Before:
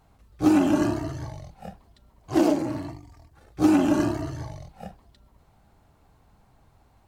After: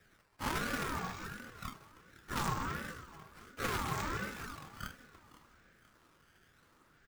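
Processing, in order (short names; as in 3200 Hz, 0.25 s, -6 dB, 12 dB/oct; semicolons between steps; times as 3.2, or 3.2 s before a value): tracing distortion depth 0.5 ms; elliptic band-pass 450–7800 Hz; in parallel at -2.5 dB: negative-ratio compressor -36 dBFS, ratio -0.5; on the sum: decimation with a swept rate 8×, swing 160% 0.67 Hz; soft clip -18 dBFS, distortion -21 dB; feedback echo 0.508 s, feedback 41%, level -17 dB; ring modulator with a swept carrier 670 Hz, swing 30%, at 1.4 Hz; gain -4.5 dB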